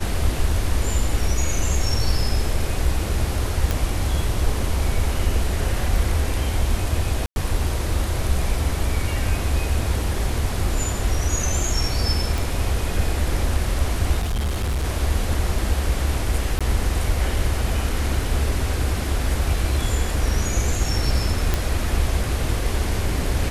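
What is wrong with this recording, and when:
0:03.71: click
0:07.26–0:07.36: drop-out 101 ms
0:12.38: click
0:14.19–0:14.85: clipping −19.5 dBFS
0:16.59–0:16.61: drop-out 16 ms
0:21.54: click −6 dBFS

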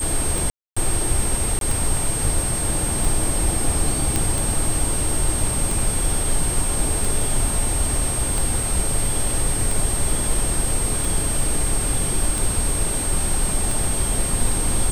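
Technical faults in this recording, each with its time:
scratch tick 45 rpm
whistle 8,500 Hz −24 dBFS
0:00.50–0:00.77: drop-out 265 ms
0:01.59–0:01.61: drop-out 22 ms
0:04.16: click
0:08.63: drop-out 2.9 ms

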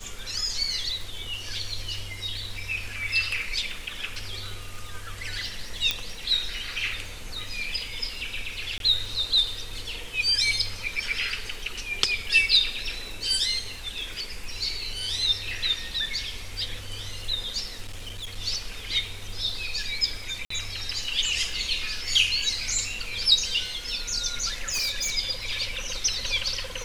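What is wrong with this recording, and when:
surface crackle 61 per second −36 dBFS
0:05.91: click −8 dBFS
0:08.78–0:08.80: drop-out 22 ms
0:17.86–0:18.37: clipping −32 dBFS
0:20.45–0:20.50: drop-out 54 ms
0:24.69–0:25.12: clipping −24 dBFS

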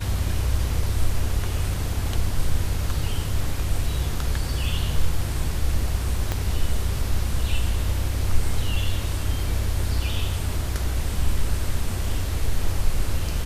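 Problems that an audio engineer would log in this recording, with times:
0:06.32: click −10 dBFS

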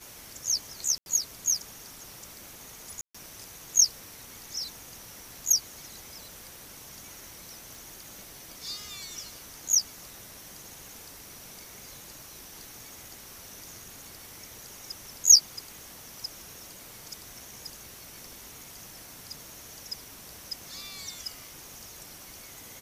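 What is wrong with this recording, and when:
0:00.98–0:01.06: drop-out 81 ms
0:03.01–0:03.15: drop-out 135 ms
0:07.75: click

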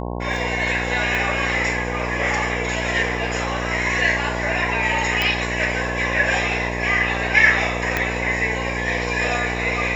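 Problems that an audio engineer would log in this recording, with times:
mains buzz 60 Hz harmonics 18 −27 dBFS
0:01.15: click −11 dBFS
0:05.22: click −6 dBFS
0:07.97: click −5 dBFS

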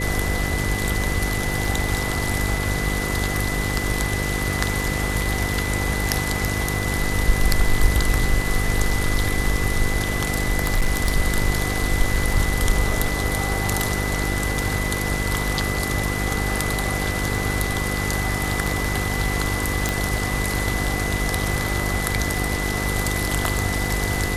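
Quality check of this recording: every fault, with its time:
mains buzz 50 Hz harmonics 10 −26 dBFS
surface crackle 11 per second −29 dBFS
whistle 2,000 Hz −28 dBFS
0:10.64–0:11.12: clipping −13.5 dBFS
0:19.89: click

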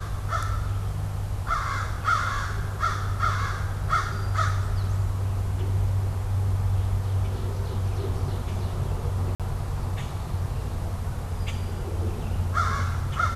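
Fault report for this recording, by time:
0:09.35–0:09.40: drop-out 47 ms

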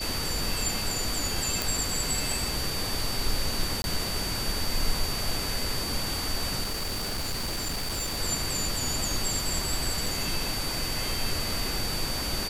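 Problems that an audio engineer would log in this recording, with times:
whistle 4,600 Hz −33 dBFS
0:01.62: click
0:03.82–0:03.84: drop-out 21 ms
0:06.63–0:08.19: clipping −27 dBFS
0:10.06: drop-out 2.7 ms

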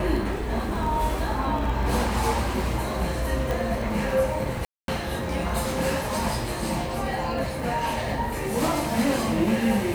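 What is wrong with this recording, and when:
surface crackle 15 per second
0:03.51: click
0:04.65–0:04.88: drop-out 232 ms

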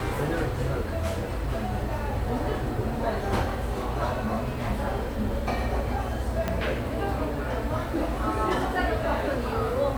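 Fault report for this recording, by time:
0:06.48: click −13 dBFS

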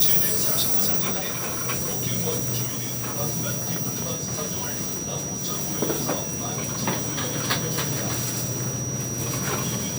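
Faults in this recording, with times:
whistle 5,800 Hz −30 dBFS
0:01.18–0:01.60: clipping −24.5 dBFS
0:02.66–0:03.18: clipping −25.5 dBFS

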